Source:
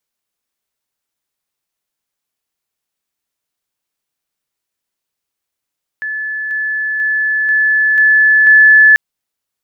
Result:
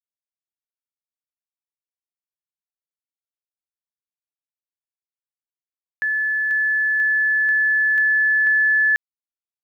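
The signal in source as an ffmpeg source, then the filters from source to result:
-f lavfi -i "aevalsrc='pow(10,(-18+3*floor(t/0.49))/20)*sin(2*PI*1730*t)':duration=2.94:sample_rate=44100"
-af "acompressor=threshold=-17dB:ratio=5,acrusher=bits=8:mix=0:aa=0.5"

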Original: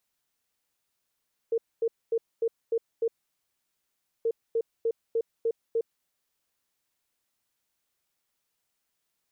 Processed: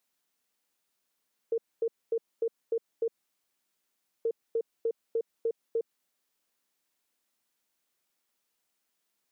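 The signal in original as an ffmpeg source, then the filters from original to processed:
-f lavfi -i "aevalsrc='0.075*sin(2*PI*457*t)*clip(min(mod(mod(t,2.73),0.3),0.06-mod(mod(t,2.73),0.3))/0.005,0,1)*lt(mod(t,2.73),1.8)':duration=5.46:sample_rate=44100"
-af "lowshelf=frequency=160:width_type=q:width=1.5:gain=-7,acompressor=threshold=-29dB:ratio=2.5"

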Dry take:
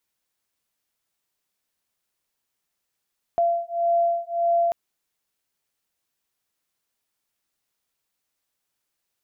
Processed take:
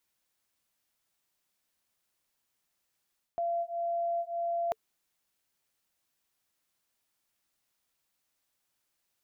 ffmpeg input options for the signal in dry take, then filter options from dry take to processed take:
-f lavfi -i "aevalsrc='0.075*(sin(2*PI*683*t)+sin(2*PI*684.7*t))':duration=1.34:sample_rate=44100"
-af "bandreject=frequency=440:width=12,areverse,acompressor=threshold=-30dB:ratio=12,areverse"

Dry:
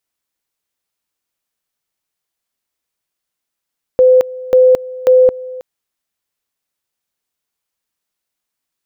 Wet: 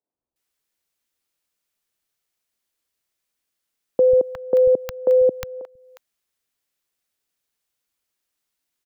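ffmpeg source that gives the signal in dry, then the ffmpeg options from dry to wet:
-f lavfi -i "aevalsrc='pow(10,(-4.5-19.5*gte(mod(t,0.54),0.22))/20)*sin(2*PI*510*t)':duration=1.62:sample_rate=44100"
-filter_complex "[0:a]acrossover=split=460[link_01][link_02];[link_02]acompressor=threshold=-29dB:ratio=3[link_03];[link_01][link_03]amix=inputs=2:normalize=0,acrossover=split=150|910[link_04][link_05][link_06];[link_04]adelay=140[link_07];[link_06]adelay=360[link_08];[link_07][link_05][link_08]amix=inputs=3:normalize=0"

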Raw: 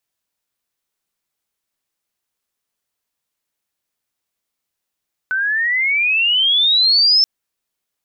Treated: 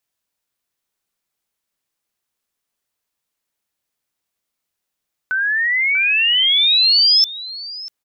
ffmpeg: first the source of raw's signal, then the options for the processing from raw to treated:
-f lavfi -i "aevalsrc='pow(10,(-9+7*(t/1.93-1))/20)*sin(2*PI*1500*1.93/(22*log(2)/12)*(exp(22*log(2)/12*t/1.93)-1))':duration=1.93:sample_rate=44100"
-filter_complex "[0:a]asplit=2[link_01][link_02];[link_02]adelay=641.4,volume=-9dB,highshelf=frequency=4000:gain=-14.4[link_03];[link_01][link_03]amix=inputs=2:normalize=0"

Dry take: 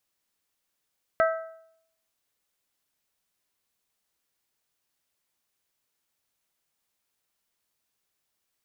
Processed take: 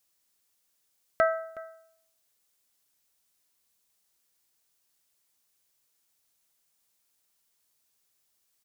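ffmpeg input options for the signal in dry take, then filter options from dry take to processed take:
-f lavfi -i "aevalsrc='0.133*pow(10,-3*t/0.71)*sin(2*PI*651*t)+0.0794*pow(10,-3*t/0.577)*sin(2*PI*1302*t)+0.0473*pow(10,-3*t/0.546)*sin(2*PI*1562.4*t)+0.0282*pow(10,-3*t/0.511)*sin(2*PI*1953*t)':duration=1.55:sample_rate=44100"
-filter_complex "[0:a]bass=frequency=250:gain=0,treble=frequency=4000:gain=7,asplit=2[link_01][link_02];[link_02]adelay=367.3,volume=-19dB,highshelf=frequency=4000:gain=-8.27[link_03];[link_01][link_03]amix=inputs=2:normalize=0"

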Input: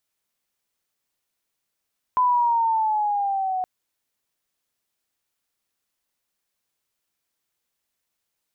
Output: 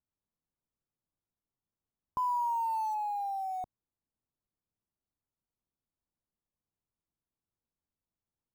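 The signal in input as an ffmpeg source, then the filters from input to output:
-f lavfi -i "aevalsrc='pow(10,(-15.5-7*t/1.47)/20)*sin(2*PI*1010*1.47/(-5.5*log(2)/12)*(exp(-5.5*log(2)/12*t/1.47)-1))':duration=1.47:sample_rate=44100"
-filter_complex "[0:a]lowpass=frequency=1000:width=0.5412,lowpass=frequency=1000:width=1.3066,equalizer=frequency=660:width=0.53:gain=-13.5,asplit=2[link_01][link_02];[link_02]acrusher=bits=3:mode=log:mix=0:aa=0.000001,volume=-9dB[link_03];[link_01][link_03]amix=inputs=2:normalize=0"

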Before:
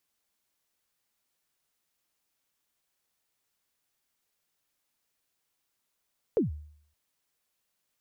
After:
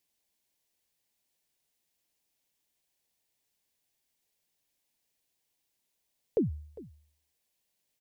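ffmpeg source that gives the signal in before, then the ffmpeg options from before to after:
-f lavfi -i "aevalsrc='0.112*pow(10,-3*t/0.62)*sin(2*PI*(510*0.137/log(75/510)*(exp(log(75/510)*min(t,0.137)/0.137)-1)+75*max(t-0.137,0)))':duration=0.57:sample_rate=44100"
-af "equalizer=frequency=1300:width=2.5:gain=-11.5,aecho=1:1:403:0.112"

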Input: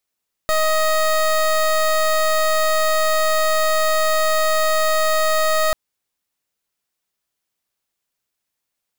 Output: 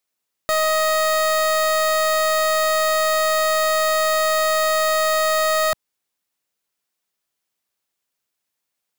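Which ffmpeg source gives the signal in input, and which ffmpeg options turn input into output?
-f lavfi -i "aevalsrc='0.141*(2*lt(mod(628*t,1),0.22)-1)':duration=5.24:sample_rate=44100"
-af "lowshelf=frequency=72:gain=-11.5"

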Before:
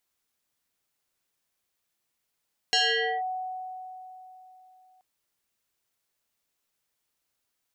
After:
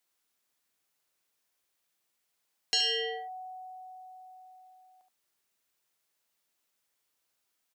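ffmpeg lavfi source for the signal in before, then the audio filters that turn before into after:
-f lavfi -i "aevalsrc='0.112*pow(10,-3*t/3.49)*sin(2*PI*744*t+4.4*clip(1-t/0.49,0,1)*sin(2*PI*1.61*744*t))':duration=2.28:sample_rate=44100"
-filter_complex "[0:a]lowshelf=frequency=170:gain=-8.5,acrossover=split=410|3000[link_01][link_02][link_03];[link_02]acompressor=threshold=-51dB:ratio=2[link_04];[link_01][link_04][link_03]amix=inputs=3:normalize=0,asplit=2[link_05][link_06];[link_06]aecho=0:1:73:0.422[link_07];[link_05][link_07]amix=inputs=2:normalize=0"

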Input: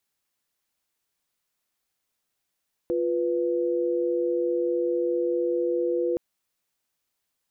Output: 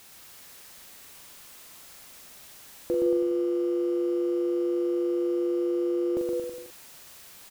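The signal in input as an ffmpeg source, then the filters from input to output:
-f lavfi -i "aevalsrc='0.0562*(sin(2*PI*349.23*t)+sin(2*PI*493.88*t))':duration=3.27:sample_rate=44100"
-filter_complex "[0:a]aeval=exprs='val(0)+0.5*0.00531*sgn(val(0))':channel_layout=same,asplit=2[link_01][link_02];[link_02]adelay=42,volume=-7dB[link_03];[link_01][link_03]amix=inputs=2:normalize=0,asplit=2[link_04][link_05];[link_05]aecho=0:1:120|228|325.2|412.7|491.4:0.631|0.398|0.251|0.158|0.1[link_06];[link_04][link_06]amix=inputs=2:normalize=0"

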